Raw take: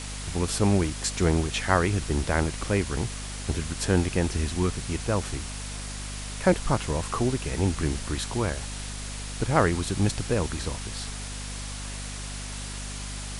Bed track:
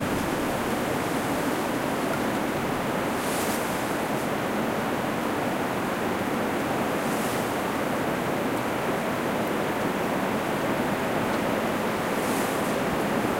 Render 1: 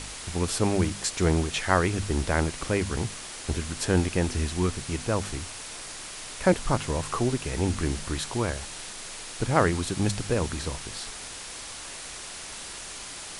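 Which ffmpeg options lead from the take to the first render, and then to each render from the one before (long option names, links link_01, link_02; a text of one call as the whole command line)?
ffmpeg -i in.wav -af "bandreject=frequency=50:width_type=h:width=4,bandreject=frequency=100:width_type=h:width=4,bandreject=frequency=150:width_type=h:width=4,bandreject=frequency=200:width_type=h:width=4,bandreject=frequency=250:width_type=h:width=4" out.wav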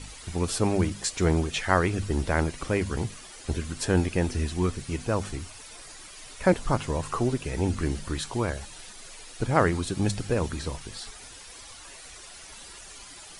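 ffmpeg -i in.wav -af "afftdn=noise_reduction=11:noise_floor=-40" out.wav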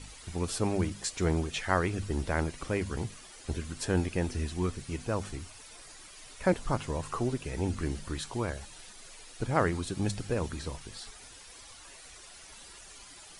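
ffmpeg -i in.wav -af "volume=-5dB" out.wav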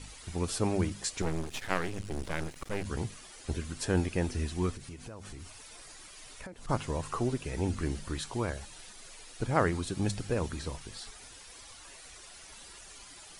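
ffmpeg -i in.wav -filter_complex "[0:a]asettb=1/sr,asplit=3[link_01][link_02][link_03];[link_01]atrim=end=1.224[link_04];[link_02]atrim=start=1.22:end=2.85,asetpts=PTS-STARTPTS,afade=type=in:duration=0.004:curve=qsin,afade=type=out:start_time=1.626:duration=0.004:curve=qsin,aeval=exprs='max(val(0),0)':channel_layout=same[link_05];[link_03]atrim=start=2.846[link_06];[link_04][link_05]acrossfade=duration=0.004:curve1=hsin:curve2=qsin[link_07];[link_07][link_06]acrossfade=duration=0.004:curve1=qsin:curve2=hsin,asplit=3[link_08][link_09][link_10];[link_08]afade=type=out:start_time=4.76:duration=0.02[link_11];[link_09]acompressor=threshold=-40dB:ratio=16:attack=3.2:release=140:knee=1:detection=peak,afade=type=in:start_time=4.76:duration=0.02,afade=type=out:start_time=6.68:duration=0.02[link_12];[link_10]afade=type=in:start_time=6.68:duration=0.02[link_13];[link_11][link_12][link_13]amix=inputs=3:normalize=0" out.wav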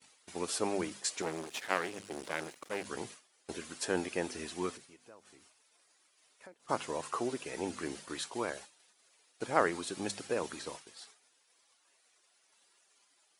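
ffmpeg -i in.wav -af "agate=range=-33dB:threshold=-37dB:ratio=3:detection=peak,highpass=340" out.wav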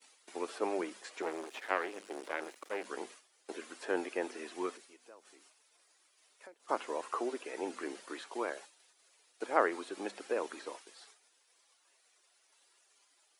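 ffmpeg -i in.wav -filter_complex "[0:a]acrossover=split=2700[link_01][link_02];[link_02]acompressor=threshold=-54dB:ratio=4:attack=1:release=60[link_03];[link_01][link_03]amix=inputs=2:normalize=0,highpass=frequency=290:width=0.5412,highpass=frequency=290:width=1.3066" out.wav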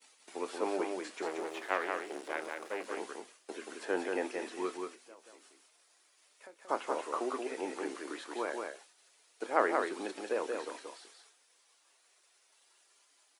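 ffmpeg -i in.wav -filter_complex "[0:a]asplit=2[link_01][link_02];[link_02]adelay=27,volume=-13dB[link_03];[link_01][link_03]amix=inputs=2:normalize=0,aecho=1:1:180:0.631" out.wav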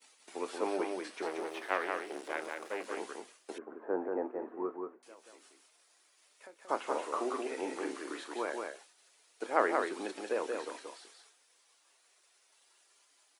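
ffmpeg -i in.wav -filter_complex "[0:a]asettb=1/sr,asplit=3[link_01][link_02][link_03];[link_01]atrim=end=0.674[link_04];[link_02]atrim=start=0.67:end=2.17,asetpts=PTS-STARTPTS,afade=type=in:duration=0.004:curve=qsin,afade=type=out:start_time=1.496:duration=0.004:curve=qsin,bandreject=frequency=7100:width=6[link_05];[link_03]atrim=start=2.166[link_06];[link_04][link_05]acrossfade=duration=0.004:curve1=hsin:curve2=qsin[link_07];[link_07][link_06]acrossfade=duration=0.004:curve1=qsin:curve2=hsin,asettb=1/sr,asplit=3[link_08][link_09][link_10];[link_08]atrim=end=3.584[link_11];[link_09]atrim=start=3.58:end=5.03,asetpts=PTS-STARTPTS,afade=type=in:duration=0.004:curve=qsin,afade=type=out:start_time=1.446:duration=0.004:curve=qsin,lowpass=frequency=1200:width=0.5412,lowpass=frequency=1200:width=1.3066[link_12];[link_10]atrim=start=5.026[link_13];[link_11][link_12]acrossfade=duration=0.004:curve1=hsin:curve2=qsin[link_14];[link_14][link_13]acrossfade=duration=0.004:curve1=qsin:curve2=hsin,asettb=1/sr,asplit=3[link_15][link_16][link_17];[link_15]atrim=end=6.814[link_18];[link_16]atrim=start=6.81:end=8.28,asetpts=PTS-STARTPTS,afade=type=in:duration=0.004:curve=qsin,afade=type=out:start_time=1.466:duration=0.004:curve=qsin,asplit=2[link_19][link_20];[link_20]adelay=45,volume=-9dB[link_21];[link_19][link_21]amix=inputs=2:normalize=0,atrim=end_sample=64827[link_22];[link_17]atrim=start=8.276[link_23];[link_18][link_22]acrossfade=duration=0.004:curve1=hsin:curve2=qsin[link_24];[link_24][link_23]acrossfade=duration=0.004:curve1=qsin:curve2=hsin" out.wav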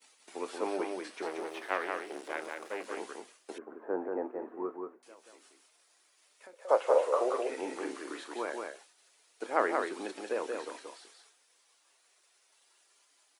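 ffmpeg -i in.wav -filter_complex "[0:a]asettb=1/sr,asplit=3[link_01][link_02][link_03];[link_01]atrim=end=6.534[link_04];[link_02]atrim=start=6.53:end=7.5,asetpts=PTS-STARTPTS,afade=type=in:duration=0.004:curve=qsin,afade=type=out:start_time=0.966:duration=0.004:curve=qsin,highpass=frequency=520:width_type=q:width=5.9[link_05];[link_03]atrim=start=7.496[link_06];[link_04][link_05]acrossfade=duration=0.004:curve1=hsin:curve2=qsin[link_07];[link_07][link_06]acrossfade=duration=0.004:curve1=qsin:curve2=hsin" out.wav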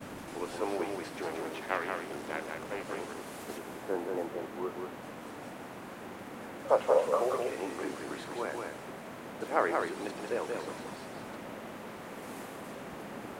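ffmpeg -i in.wav -i bed.wav -filter_complex "[1:a]volume=-17.5dB[link_01];[0:a][link_01]amix=inputs=2:normalize=0" out.wav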